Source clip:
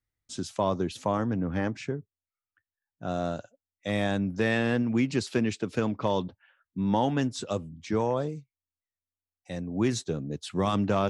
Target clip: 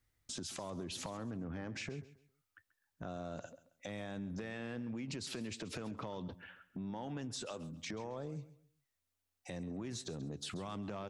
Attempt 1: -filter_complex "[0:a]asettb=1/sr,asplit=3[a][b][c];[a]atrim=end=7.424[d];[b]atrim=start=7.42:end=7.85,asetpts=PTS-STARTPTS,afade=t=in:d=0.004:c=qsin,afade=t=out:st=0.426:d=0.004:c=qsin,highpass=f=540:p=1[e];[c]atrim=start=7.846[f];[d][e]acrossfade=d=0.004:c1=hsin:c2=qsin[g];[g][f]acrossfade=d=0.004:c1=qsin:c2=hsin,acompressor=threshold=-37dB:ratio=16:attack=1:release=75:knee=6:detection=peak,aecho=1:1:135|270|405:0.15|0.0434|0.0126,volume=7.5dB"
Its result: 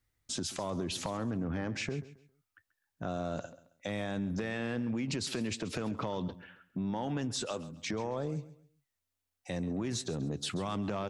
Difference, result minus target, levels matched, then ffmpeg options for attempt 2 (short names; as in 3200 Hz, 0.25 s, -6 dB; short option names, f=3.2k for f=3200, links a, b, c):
compressor: peak gain reduction -8 dB
-filter_complex "[0:a]asettb=1/sr,asplit=3[a][b][c];[a]atrim=end=7.424[d];[b]atrim=start=7.42:end=7.85,asetpts=PTS-STARTPTS,afade=t=in:d=0.004:c=qsin,afade=t=out:st=0.426:d=0.004:c=qsin,highpass=f=540:p=1[e];[c]atrim=start=7.846[f];[d][e]acrossfade=d=0.004:c1=hsin:c2=qsin[g];[g][f]acrossfade=d=0.004:c1=qsin:c2=hsin,acompressor=threshold=-45.5dB:ratio=16:attack=1:release=75:knee=6:detection=peak,aecho=1:1:135|270|405:0.15|0.0434|0.0126,volume=7.5dB"